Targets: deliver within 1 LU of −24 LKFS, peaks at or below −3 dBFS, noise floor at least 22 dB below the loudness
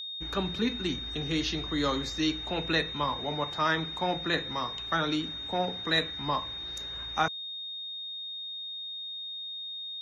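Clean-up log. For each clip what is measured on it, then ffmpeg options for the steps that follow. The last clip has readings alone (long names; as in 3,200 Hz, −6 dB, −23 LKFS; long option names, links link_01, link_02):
interfering tone 3,700 Hz; level of the tone −36 dBFS; integrated loudness −31.0 LKFS; sample peak −13.0 dBFS; target loudness −24.0 LKFS
→ -af "bandreject=frequency=3700:width=30"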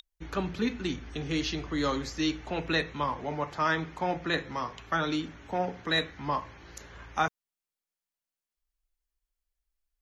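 interfering tone none found; integrated loudness −31.5 LKFS; sample peak −13.5 dBFS; target loudness −24.0 LKFS
→ -af "volume=7.5dB"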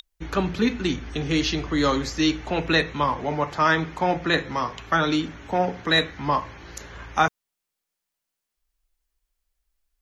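integrated loudness −24.0 LKFS; sample peak −6.0 dBFS; background noise floor −84 dBFS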